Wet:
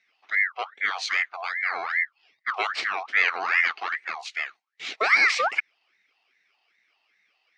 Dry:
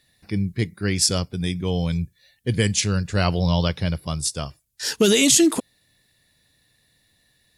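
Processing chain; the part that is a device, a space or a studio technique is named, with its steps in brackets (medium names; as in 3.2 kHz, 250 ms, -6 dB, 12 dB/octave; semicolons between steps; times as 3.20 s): voice changer toy (ring modulator with a swept carrier 1.4 kHz, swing 40%, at 2.5 Hz; cabinet simulation 500–4200 Hz, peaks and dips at 560 Hz -7 dB, 980 Hz -10 dB, 1.5 kHz -5 dB, 2.2 kHz +8 dB, 3.5 kHz -5 dB)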